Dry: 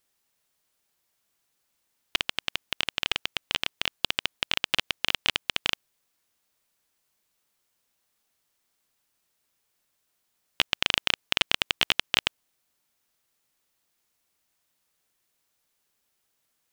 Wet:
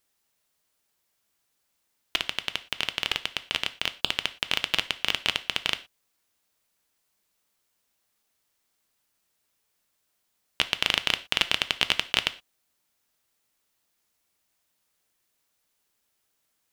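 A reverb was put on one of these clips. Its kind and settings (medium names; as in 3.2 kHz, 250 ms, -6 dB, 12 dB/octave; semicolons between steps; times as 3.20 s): gated-style reverb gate 140 ms falling, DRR 11.5 dB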